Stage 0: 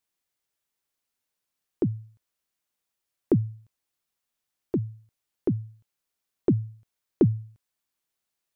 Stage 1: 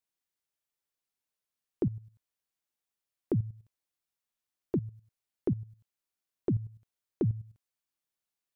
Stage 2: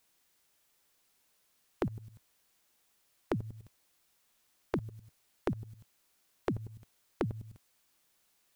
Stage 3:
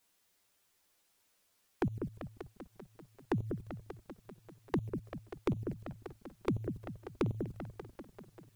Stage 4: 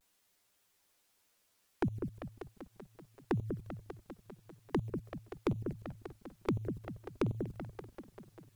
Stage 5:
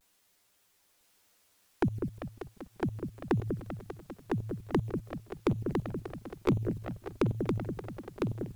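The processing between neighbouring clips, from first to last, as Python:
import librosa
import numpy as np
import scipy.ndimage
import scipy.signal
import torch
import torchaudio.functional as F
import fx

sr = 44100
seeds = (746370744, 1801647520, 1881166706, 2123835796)

y1 = fx.level_steps(x, sr, step_db=13)
y2 = fx.peak_eq(y1, sr, hz=110.0, db=-3.0, octaves=0.62)
y2 = fx.spectral_comp(y2, sr, ratio=2.0)
y2 = y2 * 10.0 ** (3.0 / 20.0)
y3 = fx.echo_opening(y2, sr, ms=195, hz=750, octaves=2, feedback_pct=70, wet_db=-6)
y3 = fx.env_flanger(y3, sr, rest_ms=10.8, full_db=-33.0)
y3 = y3 * 10.0 ** (1.5 / 20.0)
y4 = fx.vibrato(y3, sr, rate_hz=0.44, depth_cents=34.0)
y5 = y4 + 10.0 ** (-3.5 / 20.0) * np.pad(y4, (int(1005 * sr / 1000.0), 0))[:len(y4)]
y5 = y5 * 10.0 ** (4.5 / 20.0)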